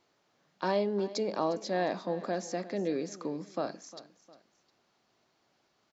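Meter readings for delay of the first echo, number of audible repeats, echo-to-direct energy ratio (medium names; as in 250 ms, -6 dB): 355 ms, 2, -16.5 dB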